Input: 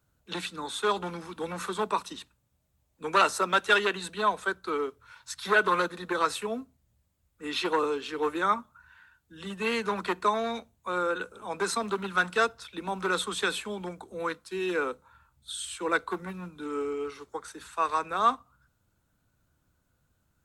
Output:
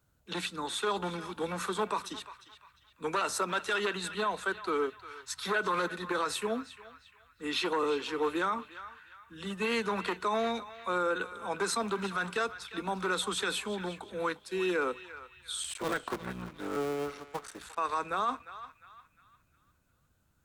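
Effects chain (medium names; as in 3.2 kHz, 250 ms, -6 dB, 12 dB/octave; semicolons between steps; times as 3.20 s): 15.63–17.78 s: cycle switcher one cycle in 3, muted; peak limiter -21.5 dBFS, peak gain reduction 11.5 dB; band-passed feedback delay 352 ms, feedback 45%, band-pass 2.2 kHz, level -11.5 dB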